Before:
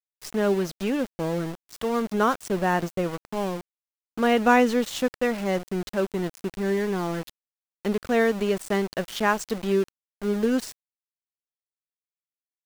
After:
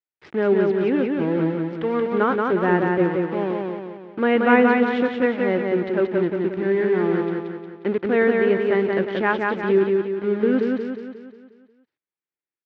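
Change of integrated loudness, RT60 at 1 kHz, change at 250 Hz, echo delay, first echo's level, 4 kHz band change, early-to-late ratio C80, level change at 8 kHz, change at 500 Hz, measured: +4.5 dB, no reverb audible, +5.0 dB, 179 ms, −3.0 dB, −3.5 dB, no reverb audible, below −25 dB, +6.0 dB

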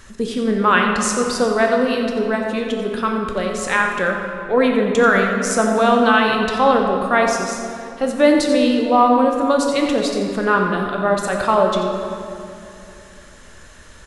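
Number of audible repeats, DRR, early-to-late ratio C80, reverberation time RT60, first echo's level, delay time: 1, 1.5 dB, 3.5 dB, 2.8 s, −11.0 dB, 89 ms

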